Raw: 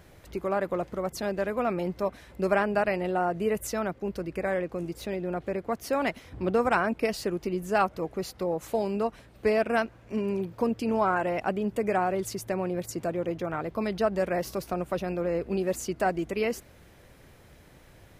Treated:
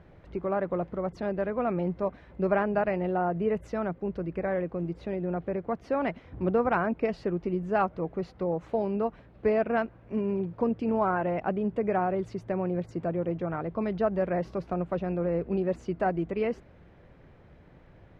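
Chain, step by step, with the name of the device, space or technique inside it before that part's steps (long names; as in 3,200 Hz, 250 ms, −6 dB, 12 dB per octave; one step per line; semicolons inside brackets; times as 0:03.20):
phone in a pocket (low-pass filter 3,500 Hz 12 dB per octave; parametric band 170 Hz +5 dB 0.21 octaves; high-shelf EQ 2,300 Hz −11.5 dB)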